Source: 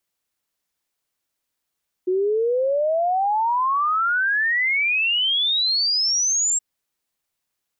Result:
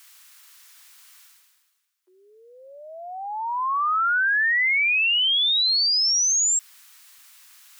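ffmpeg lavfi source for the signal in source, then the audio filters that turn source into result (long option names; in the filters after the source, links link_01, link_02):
-f lavfi -i "aevalsrc='0.133*clip(min(t,4.52-t)/0.01,0,1)*sin(2*PI*360*4.52/log(7600/360)*(exp(log(7600/360)*t/4.52)-1))':duration=4.52:sample_rate=44100"
-af "areverse,acompressor=mode=upward:threshold=-27dB:ratio=2.5,areverse,highpass=frequency=1100:width=0.5412,highpass=frequency=1100:width=1.3066"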